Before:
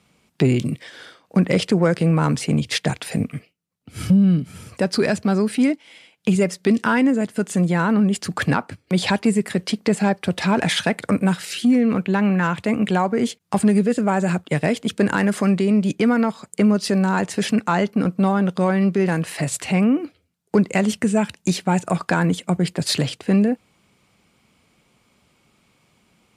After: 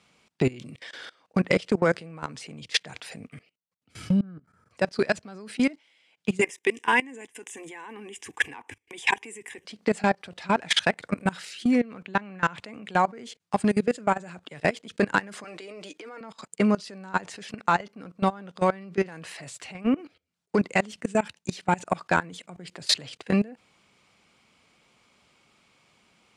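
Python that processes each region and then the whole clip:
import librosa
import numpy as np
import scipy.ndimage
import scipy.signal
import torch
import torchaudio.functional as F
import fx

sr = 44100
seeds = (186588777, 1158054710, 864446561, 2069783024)

y = fx.chain(x, sr, fx.high_shelf_res(hz=2000.0, db=-11.0, q=3.0),
    fx.level_steps(step_db=20), at=(4.21, 4.71))
y = fx.chain(y, sr, fx.high_shelf(hz=2100.0, db=10.0),
    fx.fixed_phaser(hz=900.0, stages=8), at=(6.41, 9.65))
y = fx.chain(y, sr, fx.highpass(hz=320.0, slope=24),
    fx.comb(ms=6.5, depth=0.45),
    fx.over_compress(threshold_db=-26.0, ratio=-1.0), at=(15.44, 16.21))
y = scipy.signal.sosfilt(scipy.signal.butter(2, 7600.0, 'lowpass', fs=sr, output='sos'), y)
y = fx.low_shelf(y, sr, hz=380.0, db=-9.5)
y = fx.level_steps(y, sr, step_db=22)
y = F.gain(torch.from_numpy(y), 2.5).numpy()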